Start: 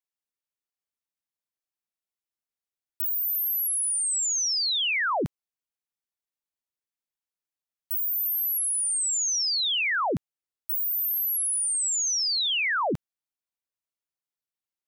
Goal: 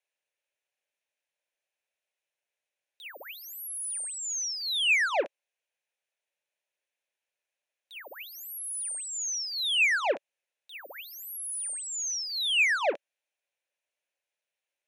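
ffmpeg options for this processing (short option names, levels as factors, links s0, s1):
-filter_complex "[0:a]acrossover=split=4000[s0][s1];[s1]acompressor=threshold=0.0282:ratio=4:attack=1:release=60[s2];[s0][s2]amix=inputs=2:normalize=0,asoftclip=type=tanh:threshold=0.0211,highpass=f=410:w=0.5412,highpass=f=410:w=1.3066,equalizer=f=570:t=q:w=4:g=9,equalizer=f=1200:t=q:w=4:g=-9,equalizer=f=1700:t=q:w=4:g=4,equalizer=f=2500:t=q:w=4:g=8,equalizer=f=4800:t=q:w=4:g=-8,equalizer=f=7900:t=q:w=4:g=-8,lowpass=f=9700:w=0.5412,lowpass=f=9700:w=1.3066,volume=2.11"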